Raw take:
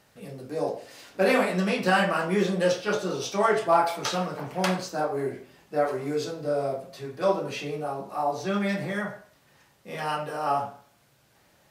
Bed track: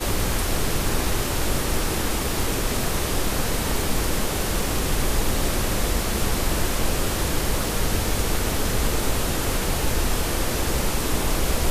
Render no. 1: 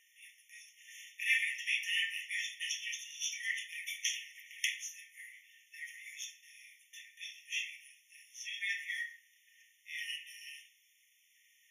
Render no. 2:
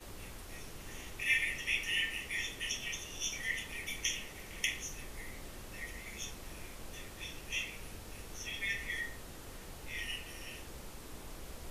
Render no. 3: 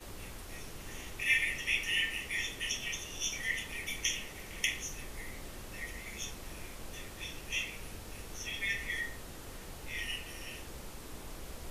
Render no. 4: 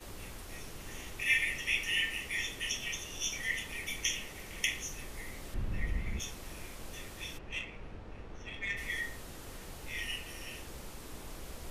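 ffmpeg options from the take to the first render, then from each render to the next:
ffmpeg -i in.wav -af "afftfilt=real='re*eq(mod(floor(b*sr/1024/1800),2),1)':imag='im*eq(mod(floor(b*sr/1024/1800),2),1)':win_size=1024:overlap=0.75" out.wav
ffmpeg -i in.wav -i bed.wav -filter_complex "[1:a]volume=-25dB[link_01];[0:a][link_01]amix=inputs=2:normalize=0" out.wav
ffmpeg -i in.wav -af "volume=2dB" out.wav
ffmpeg -i in.wav -filter_complex "[0:a]asettb=1/sr,asplit=3[link_01][link_02][link_03];[link_01]atrim=end=5.544[link_04];[link_02]atrim=start=5.54:end=6.2,asetpts=PTS-STARTPTS,afade=type=in:duration=0.004:curve=qsin,afade=type=out:start_time=0.656:duration=0.004:curve=qsin,bass=frequency=250:gain=14,treble=frequency=4000:gain=-12[link_05];[link_03]atrim=start=6.196[link_06];[link_04][link_05]acrossfade=duration=0.004:curve1=hsin:curve2=qsin[link_07];[link_07][link_06]acrossfade=duration=0.004:curve1=qsin:curve2=hsin,asplit=3[link_08][link_09][link_10];[link_08]afade=type=out:start_time=7.37:duration=0.02[link_11];[link_09]adynamicsmooth=sensitivity=2:basefreq=2100,afade=type=in:start_time=7.37:duration=0.02,afade=type=out:start_time=8.76:duration=0.02[link_12];[link_10]afade=type=in:start_time=8.76:duration=0.02[link_13];[link_11][link_12][link_13]amix=inputs=3:normalize=0" out.wav

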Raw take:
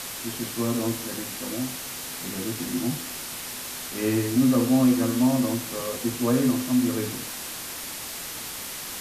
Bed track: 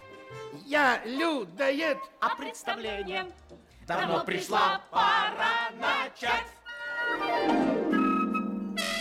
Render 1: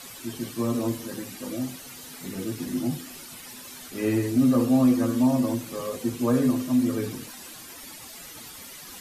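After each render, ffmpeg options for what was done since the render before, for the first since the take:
ffmpeg -i in.wav -af "afftdn=noise_reduction=12:noise_floor=-36" out.wav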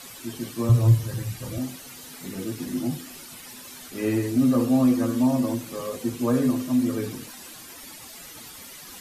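ffmpeg -i in.wav -filter_complex "[0:a]asettb=1/sr,asplit=3[link_01][link_02][link_03];[link_01]atrim=end=0.694[link_04];[link_02]atrim=start=0.69:end=1.58,asetpts=PTS-STARTPTS,afade=type=in:duration=0.004:curve=qsin,afade=type=out:start_time=0.886:duration=0.004:curve=qsin,lowshelf=frequency=170:width_type=q:width=3:gain=12[link_05];[link_03]atrim=start=1.576[link_06];[link_04][link_05]acrossfade=duration=0.004:curve1=hsin:curve2=qsin[link_07];[link_07][link_06]acrossfade=duration=0.004:curve1=qsin:curve2=hsin" out.wav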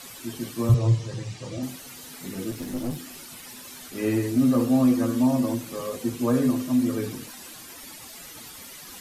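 ffmpeg -i in.wav -filter_complex "[0:a]asettb=1/sr,asplit=3[link_01][link_02][link_03];[link_01]atrim=end=0.744[link_04];[link_02]atrim=start=0.74:end=1.63,asetpts=PTS-STARTPTS,afade=type=in:duration=0.004:curve=qsin,afade=type=out:start_time=0.886:duration=0.004:curve=qsin,highpass=120,equalizer=frequency=240:width_type=q:width=4:gain=-4,equalizer=frequency=450:width_type=q:width=4:gain=3,equalizer=frequency=1500:width_type=q:width=4:gain=-6,lowpass=frequency=7200:width=0.5412,lowpass=frequency=7200:width=1.3066[link_05];[link_03]atrim=start=1.626[link_06];[link_04][link_05]acrossfade=duration=0.004:curve1=hsin:curve2=qsin[link_07];[link_07][link_06]acrossfade=duration=0.004:curve1=qsin:curve2=hsin,asettb=1/sr,asplit=3[link_08][link_09][link_10];[link_08]atrim=end=2.514[link_11];[link_09]atrim=start=2.51:end=3.81,asetpts=PTS-STARTPTS,afade=type=in:duration=0.004:curve=qsin,afade=type=out:start_time=1.296:duration=0.004:curve=qsin,aeval=exprs='clip(val(0),-1,0.0224)':channel_layout=same[link_12];[link_10]atrim=start=3.806[link_13];[link_11][link_12]acrossfade=duration=0.004:curve1=hsin:curve2=qsin[link_14];[link_14][link_13]acrossfade=duration=0.004:curve1=qsin:curve2=hsin,asettb=1/sr,asplit=3[link_15][link_16][link_17];[link_15]atrim=end=4.354[link_18];[link_16]atrim=start=4.35:end=4.87,asetpts=PTS-STARTPTS,afade=type=in:duration=0.004:curve=qsin,afade=type=out:start_time=0.516:duration=0.004:curve=qsin,aeval=exprs='sgn(val(0))*max(abs(val(0))-0.00335,0)':channel_layout=same[link_19];[link_17]atrim=start=4.866[link_20];[link_18][link_19]acrossfade=duration=0.004:curve1=hsin:curve2=qsin[link_21];[link_21][link_20]acrossfade=duration=0.004:curve1=qsin:curve2=hsin" out.wav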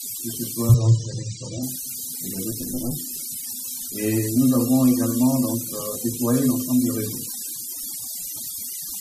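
ffmpeg -i in.wav -af "bass=frequency=250:gain=4,treble=frequency=4000:gain=14,afftfilt=real='re*gte(hypot(re,im),0.0178)':imag='im*gte(hypot(re,im),0.0178)':win_size=1024:overlap=0.75" out.wav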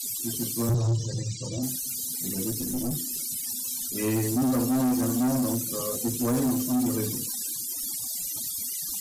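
ffmpeg -i in.wav -af "asoftclip=type=tanh:threshold=-21dB" out.wav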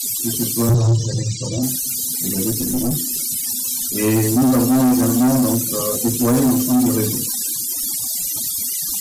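ffmpeg -i in.wav -af "volume=9.5dB" out.wav

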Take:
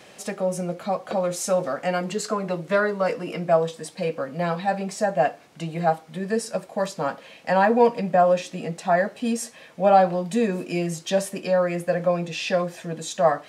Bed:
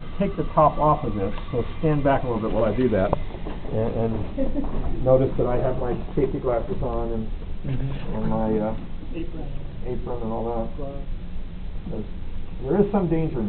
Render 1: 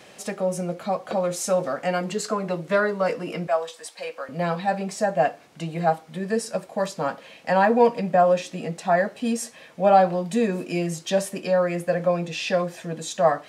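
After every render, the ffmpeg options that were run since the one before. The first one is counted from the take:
ffmpeg -i in.wav -filter_complex "[0:a]asettb=1/sr,asplit=3[link_01][link_02][link_03];[link_01]atrim=end=3.474[link_04];[link_02]atrim=start=3.47:end=4.29,asetpts=PTS-STARTPTS,afade=type=in:duration=0.004:curve=qsin,afade=type=out:start_time=0.816:duration=0.004:curve=qsin,highpass=730[link_05];[link_03]atrim=start=4.286[link_06];[link_04][link_05]acrossfade=duration=0.004:curve1=hsin:curve2=qsin[link_07];[link_07][link_06]acrossfade=duration=0.004:curve1=qsin:curve2=hsin" out.wav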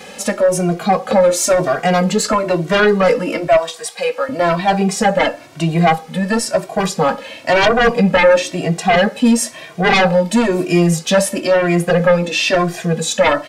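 ffmpeg -i in.wav -filter_complex "[0:a]aeval=exprs='0.562*sin(PI/2*3.98*val(0)/0.562)':channel_layout=same,asplit=2[link_01][link_02];[link_02]adelay=2,afreqshift=1[link_03];[link_01][link_03]amix=inputs=2:normalize=1" out.wav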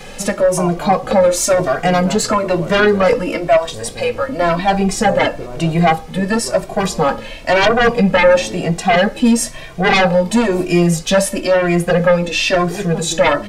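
ffmpeg -i in.wav -i bed.wav -filter_complex "[1:a]volume=-6.5dB[link_01];[0:a][link_01]amix=inputs=2:normalize=0" out.wav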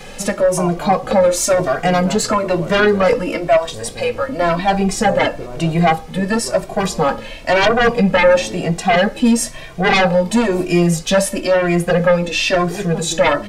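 ffmpeg -i in.wav -af "volume=-1dB" out.wav

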